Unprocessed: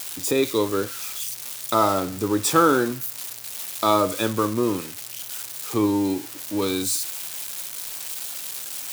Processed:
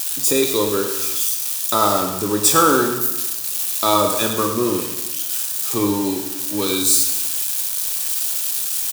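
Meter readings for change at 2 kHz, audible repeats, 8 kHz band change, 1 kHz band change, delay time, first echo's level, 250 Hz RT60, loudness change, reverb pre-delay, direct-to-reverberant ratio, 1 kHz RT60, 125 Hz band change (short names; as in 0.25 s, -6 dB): +3.5 dB, 1, +10.0 dB, +3.5 dB, 0.103 s, -11.5 dB, 1.1 s, +6.5 dB, 5 ms, 4.0 dB, 1.1 s, +1.5 dB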